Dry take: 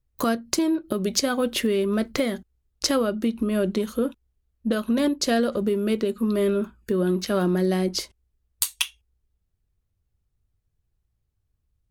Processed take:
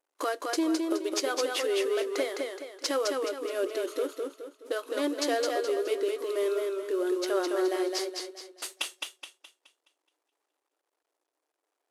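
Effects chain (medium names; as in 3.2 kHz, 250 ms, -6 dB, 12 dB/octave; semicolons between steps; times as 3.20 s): CVSD coder 64 kbps; brick-wall FIR high-pass 280 Hz; modulated delay 211 ms, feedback 40%, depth 59 cents, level -3.5 dB; trim -4.5 dB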